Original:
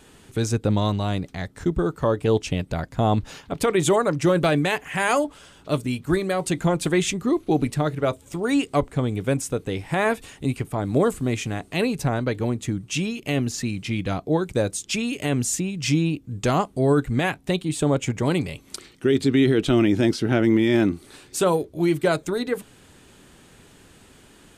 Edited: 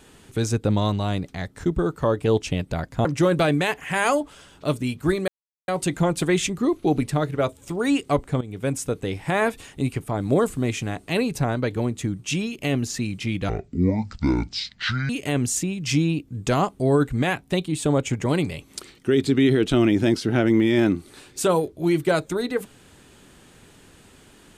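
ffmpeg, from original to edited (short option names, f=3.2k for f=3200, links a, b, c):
-filter_complex "[0:a]asplit=6[a][b][c][d][e][f];[a]atrim=end=3.052[g];[b]atrim=start=4.088:end=6.32,asetpts=PTS-STARTPTS,afade=t=out:st=2.228:d=0.004:c=hsin,apad=pad_dur=0.4[h];[c]atrim=start=6.32:end=9.05,asetpts=PTS-STARTPTS,afade=t=in:d=0.004:c=hsin,afade=t=out:st=2.726:d=0.004:c=hsin:silence=0.188365[i];[d]atrim=start=9.05:end=14.134,asetpts=PTS-STARTPTS,afade=t=in:d=0.38:silence=0.188365[j];[e]atrim=start=14.13:end=15.06,asetpts=PTS-STARTPTS,asetrate=25578,aresample=44100,atrim=end_sample=70712,asetpts=PTS-STARTPTS[k];[f]atrim=start=15.056[l];[h][i][j]concat=n=3:v=0:a=1[m];[g][m]acrossfade=d=0.004:c1=hsin:c2=hsin[n];[n][k]acrossfade=d=0.004:c1=hsin:c2=hsin[o];[o][l]acrossfade=d=0.004:c1=hsin:c2=hsin"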